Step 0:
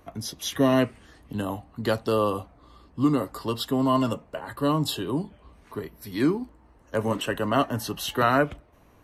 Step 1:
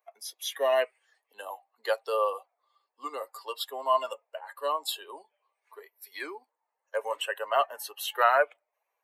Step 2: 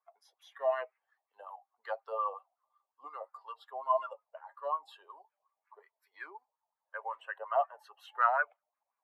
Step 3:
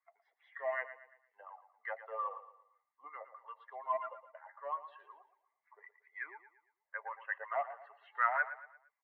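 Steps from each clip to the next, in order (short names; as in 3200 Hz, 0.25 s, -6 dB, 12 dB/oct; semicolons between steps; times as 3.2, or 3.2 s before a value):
per-bin expansion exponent 1.5; steep high-pass 510 Hz 36 dB/oct; dynamic EQ 5600 Hz, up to -7 dB, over -52 dBFS, Q 1.4; gain +2 dB
wah 5.5 Hz 680–1400 Hz, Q 3.9
in parallel at -11.5 dB: soft clip -30 dBFS, distortion -8 dB; on the sum: ladder low-pass 2100 Hz, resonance 85%; feedback echo 0.115 s, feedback 39%, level -13 dB; gain +4 dB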